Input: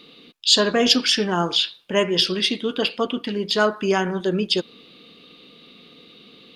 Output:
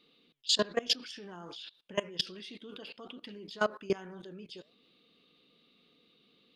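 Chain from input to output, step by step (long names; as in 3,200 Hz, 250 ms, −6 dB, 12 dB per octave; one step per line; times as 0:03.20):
flanger 1.2 Hz, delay 1.2 ms, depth 6.5 ms, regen +84%
output level in coarse steps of 21 dB
level −4 dB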